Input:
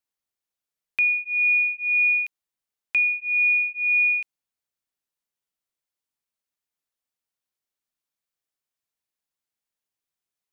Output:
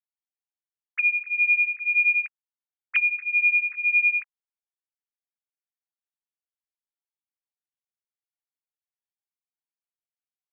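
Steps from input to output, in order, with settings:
three sine waves on the formant tracks
level −1 dB

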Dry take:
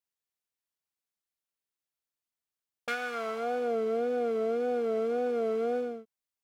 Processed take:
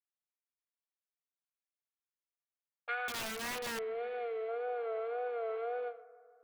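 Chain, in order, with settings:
Chebyshev band-pass filter 360–4,200 Hz, order 4
noise gate −36 dBFS, range −12 dB
0:03.28–0:04.49: gain on a spectral selection 470–1,700 Hz −8 dB
three-way crossover with the lows and the highs turned down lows −20 dB, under 510 Hz, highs −16 dB, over 2,700 Hz
in parallel at −3 dB: compressor whose output falls as the input rises −42 dBFS, ratio −0.5
0:03.08–0:03.79: on the sum: wrap-around overflow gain 32 dB
on a send: bucket-brigade delay 154 ms, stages 2,048, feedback 65%, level −19 dB
on the sum: level −2 dB

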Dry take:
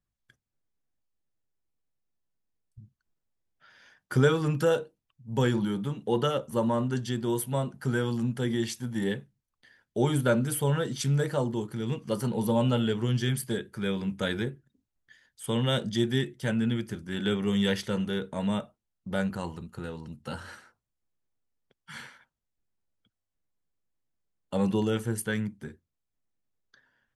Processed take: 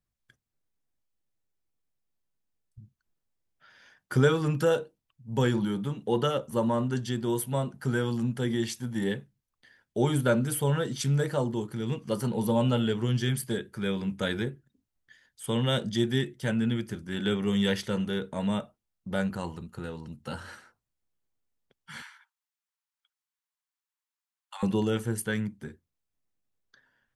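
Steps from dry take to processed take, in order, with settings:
0:22.02–0:24.63: Butterworth high-pass 860 Hz 48 dB per octave

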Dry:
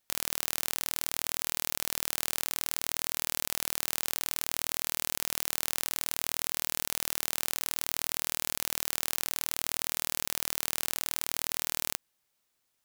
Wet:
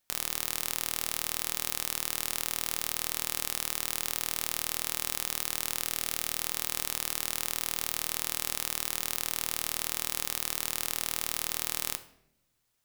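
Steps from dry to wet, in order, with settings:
0:05.81–0:06.38: notch filter 980 Hz, Q 6.2
rectangular room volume 200 cubic metres, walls mixed, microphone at 0.34 metres

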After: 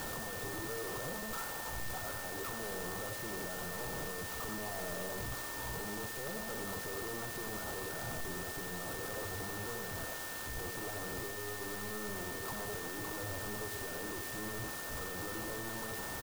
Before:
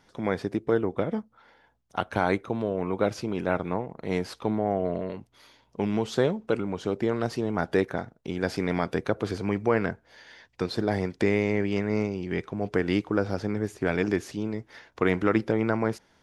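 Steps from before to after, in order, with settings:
linear delta modulator 64 kbit/s, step −25 dBFS
parametric band 1,900 Hz +9 dB 0.43 octaves
brickwall limiter −16.5 dBFS, peak gain reduction 10.5 dB
parametric band 220 Hz −8.5 dB 1.4 octaves
single-tap delay 90 ms −8 dB
wave folding −28.5 dBFS
Chebyshev band-stop filter 1,400–7,800 Hz, order 4
steady tone 1,800 Hz −36 dBFS
converter with an unsteady clock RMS 0.087 ms
level −6 dB

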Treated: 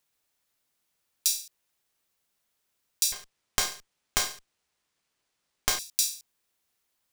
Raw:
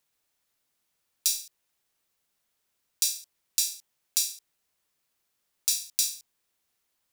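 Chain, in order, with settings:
0:03.12–0:05.79: windowed peak hold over 3 samples

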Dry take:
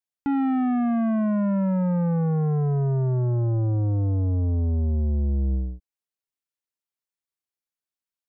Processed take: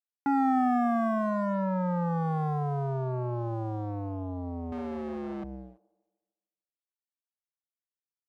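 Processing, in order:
loudspeaker in its box 210–2,200 Hz, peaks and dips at 210 Hz −5 dB, 310 Hz −3 dB, 460 Hz −8 dB, 770 Hz +6 dB, 1,100 Hz +6 dB, 1,700 Hz +3 dB
dead-zone distortion −53.5 dBFS
on a send: delay with a band-pass on its return 150 ms, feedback 44%, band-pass 700 Hz, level −19 dB
0:04.72–0:05.44: on the sum: mid-hump overdrive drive 33 dB, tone 1,200 Hz, clips at −28.5 dBFS

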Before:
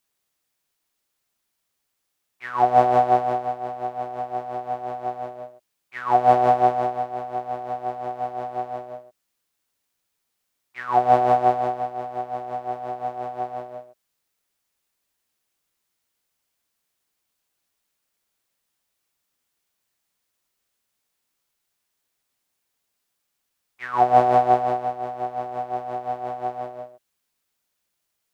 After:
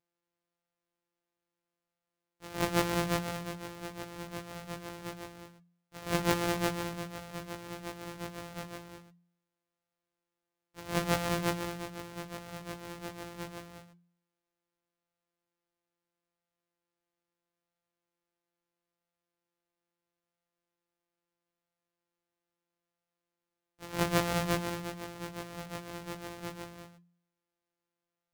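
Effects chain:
samples sorted by size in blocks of 256 samples
flanger 0.76 Hz, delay 9 ms, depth 1.2 ms, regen −66%
hum removal 86.58 Hz, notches 3
level −7 dB

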